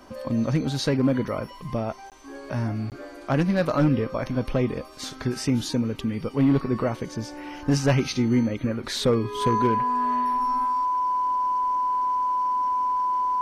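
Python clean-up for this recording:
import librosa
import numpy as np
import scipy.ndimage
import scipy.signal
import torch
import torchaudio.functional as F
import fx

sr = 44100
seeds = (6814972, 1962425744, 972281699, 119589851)

y = fx.fix_declip(x, sr, threshold_db=-13.5)
y = fx.notch(y, sr, hz=1000.0, q=30.0)
y = fx.fix_interpolate(y, sr, at_s=(2.1, 2.9), length_ms=18.0)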